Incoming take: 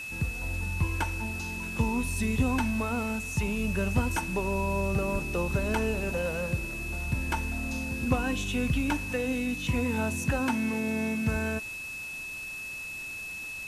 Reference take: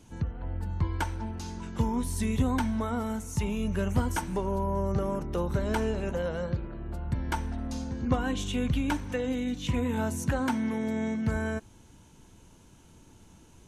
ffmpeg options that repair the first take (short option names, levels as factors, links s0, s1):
-filter_complex "[0:a]bandreject=f=2600:w=30,asplit=3[s0][s1][s2];[s0]afade=t=out:st=5.12:d=0.02[s3];[s1]highpass=f=140:w=0.5412,highpass=f=140:w=1.3066,afade=t=in:st=5.12:d=0.02,afade=t=out:st=5.24:d=0.02[s4];[s2]afade=t=in:st=5.24:d=0.02[s5];[s3][s4][s5]amix=inputs=3:normalize=0,afwtdn=0.0045"